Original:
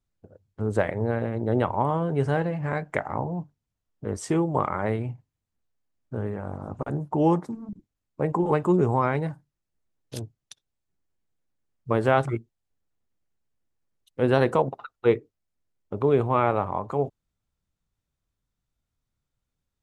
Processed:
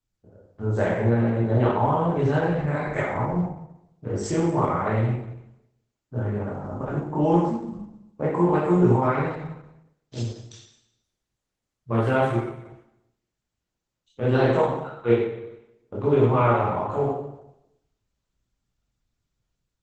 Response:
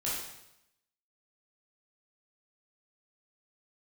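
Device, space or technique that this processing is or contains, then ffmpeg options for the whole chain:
speakerphone in a meeting room: -filter_complex "[0:a]asettb=1/sr,asplit=3[s0][s1][s2];[s0]atrim=end=1.494[s3];[s1]atrim=start=1.49:end=3.08,asetpts=PTS-STARTPTS,afade=t=in:d=0.004:c=qsin,afade=t=out:st=1.586:d=0.004:c=qsin,bandreject=f=1400:w=21[s4];[s2]atrim=start=3.076[s5];[s3][s4]acrossfade=d=0.004:c1=hsin:c2=qsin[s6];[s6][s5]acrossfade=d=0.004:c1=qsin:c2=hsin[s7];[1:a]atrim=start_sample=2205[s8];[s7][s8]afir=irnorm=-1:irlink=0,dynaudnorm=f=110:g=7:m=1.58,volume=0.562" -ar 48000 -c:a libopus -b:a 12k

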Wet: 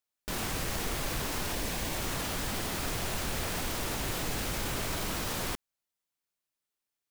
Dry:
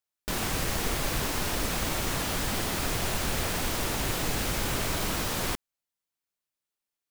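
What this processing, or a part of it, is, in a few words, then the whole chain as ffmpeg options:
clipper into limiter: -filter_complex "[0:a]asoftclip=type=hard:threshold=0.1,alimiter=level_in=1.06:limit=0.0631:level=0:latency=1,volume=0.944,asettb=1/sr,asplit=3[s0][s1][s2];[s0]atrim=end=1.524[s3];[s1]atrim=start=1.52:end=1.98,asetpts=PTS-STARTPTS,afade=t=in:d=0.004:c=qsin,afade=t=out:st=0.456:d=0.004:c=qsin,bandreject=f=1300:w=6.2[s4];[s2]atrim=start=1.976[s5];[s3][s4]acrossfade=d=0.004:c1=hsin:c2=qsin[s6];[s6][s5]acrossfade=d=0.004:c1=qsin:c2=hsin"

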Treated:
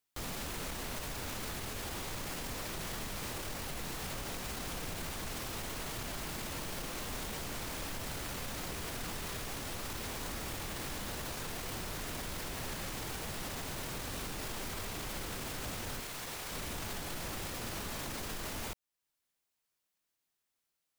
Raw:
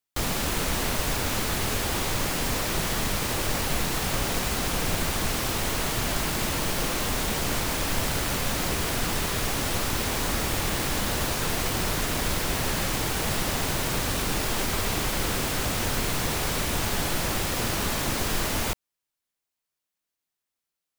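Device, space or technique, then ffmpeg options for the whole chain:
stacked limiters: -filter_complex "[0:a]alimiter=limit=0.112:level=0:latency=1:release=499,alimiter=level_in=1.26:limit=0.0631:level=0:latency=1:release=29,volume=0.794,alimiter=level_in=2.51:limit=0.0631:level=0:latency=1:release=342,volume=0.398,asettb=1/sr,asplit=3[s0][s1][s2];[s0]atrim=end=16.004[s3];[s1]atrim=start=16:end=16.52,asetpts=PTS-STARTPTS,afade=t=in:d=0.004:c=qsin,afade=t=out:st=0.516:d=0.004:c=qsin,lowshelf=f=380:g=-8.5[s4];[s2]atrim=start=16.516[s5];[s3][s4]acrossfade=d=0.004:c1=hsin:c2=qsin[s6];[s6][s5]acrossfade=d=0.004:c1=qsin:c2=hsin,volume=1.12"

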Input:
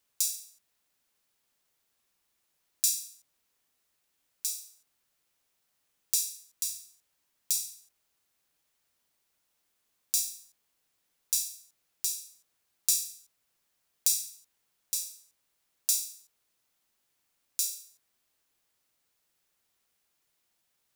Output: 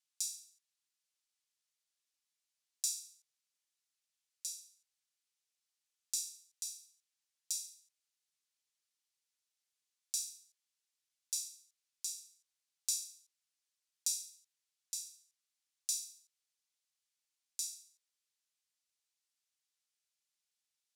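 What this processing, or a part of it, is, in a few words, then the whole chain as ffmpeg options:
piezo pickup straight into a mixer: -af "lowpass=6300,aderivative,volume=0.708"

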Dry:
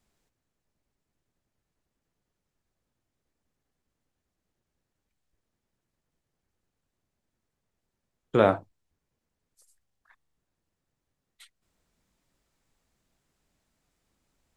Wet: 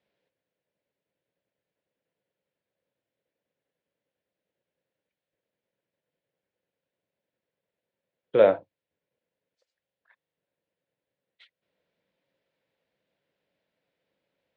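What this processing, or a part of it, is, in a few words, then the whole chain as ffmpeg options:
kitchen radio: -af "highpass=210,equalizer=f=240:t=q:w=4:g=-7,equalizer=f=350:t=q:w=4:g=-4,equalizer=f=530:t=q:w=4:g=9,equalizer=f=800:t=q:w=4:g=-5,equalizer=f=1200:t=q:w=4:g=-10,lowpass=f=3700:w=0.5412,lowpass=f=3700:w=1.3066"

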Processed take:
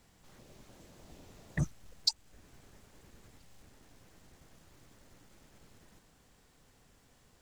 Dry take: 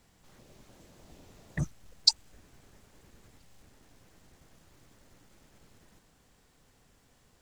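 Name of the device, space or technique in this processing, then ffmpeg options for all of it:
limiter into clipper: -af "alimiter=limit=0.237:level=0:latency=1:release=420,asoftclip=type=hard:threshold=0.188"

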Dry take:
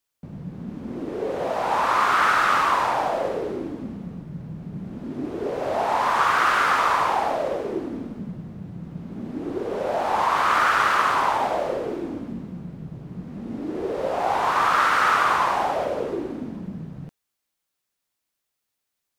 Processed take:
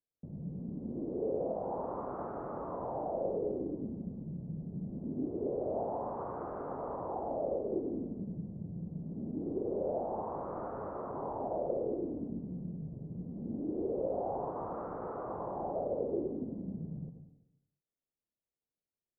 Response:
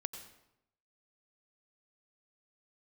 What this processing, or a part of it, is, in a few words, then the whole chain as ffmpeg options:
next room: -filter_complex "[0:a]lowpass=f=620:w=0.5412,lowpass=f=620:w=1.3066[s0];[1:a]atrim=start_sample=2205[s1];[s0][s1]afir=irnorm=-1:irlink=0,volume=0.531"

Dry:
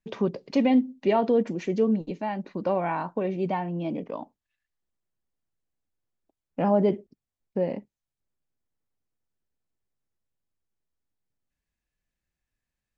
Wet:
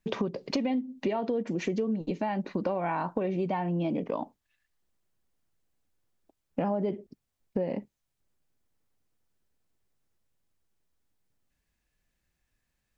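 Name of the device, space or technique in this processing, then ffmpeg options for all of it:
serial compression, peaks first: -af "acompressor=threshold=0.0355:ratio=5,acompressor=threshold=0.0158:ratio=2,volume=2.24"

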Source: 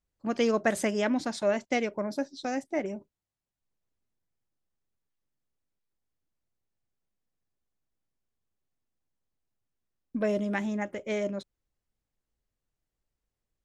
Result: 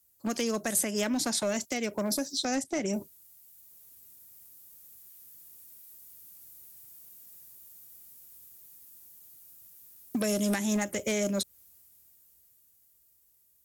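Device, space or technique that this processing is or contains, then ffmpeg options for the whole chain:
FM broadcast chain: -filter_complex "[0:a]highpass=f=52:w=0.5412,highpass=f=52:w=1.3066,dynaudnorm=f=300:g=17:m=6.31,acrossover=split=230|3600[s0][s1][s2];[s0]acompressor=threshold=0.0178:ratio=4[s3];[s1]acompressor=threshold=0.0251:ratio=4[s4];[s2]acompressor=threshold=0.00355:ratio=4[s5];[s3][s4][s5]amix=inputs=3:normalize=0,aemphasis=mode=production:type=50fm,alimiter=limit=0.0668:level=0:latency=1:release=227,asoftclip=type=hard:threshold=0.0447,lowpass=f=15000:w=0.5412,lowpass=f=15000:w=1.3066,aemphasis=mode=production:type=50fm,asplit=3[s6][s7][s8];[s6]afade=t=out:st=2.44:d=0.02[s9];[s7]lowpass=7300,afade=t=in:st=2.44:d=0.02,afade=t=out:st=2.92:d=0.02[s10];[s8]afade=t=in:st=2.92:d=0.02[s11];[s9][s10][s11]amix=inputs=3:normalize=0,volume=1.58"

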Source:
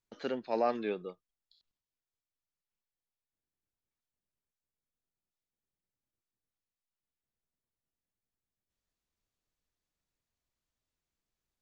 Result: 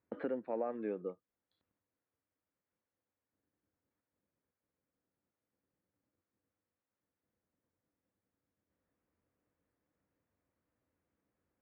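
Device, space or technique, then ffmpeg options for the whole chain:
bass amplifier: -af "acompressor=threshold=0.00316:ratio=3,highpass=80,equalizer=f=90:t=q:w=4:g=7,equalizer=f=200:t=q:w=4:g=4,equalizer=f=290:t=q:w=4:g=9,equalizer=f=510:t=q:w=4:g=8,lowpass=f=2000:w=0.5412,lowpass=f=2000:w=1.3066,volume=2"

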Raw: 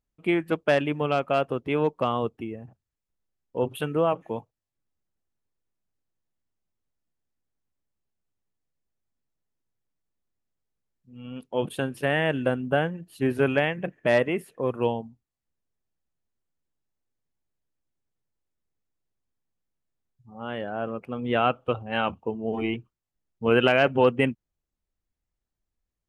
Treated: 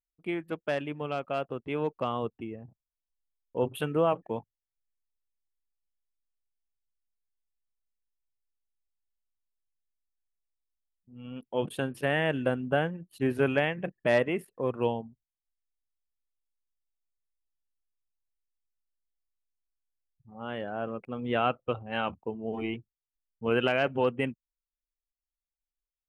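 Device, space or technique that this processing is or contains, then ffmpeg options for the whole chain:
voice memo with heavy noise removal: -af "anlmdn=0.00398,dynaudnorm=f=210:g=21:m=2.37,volume=0.355"

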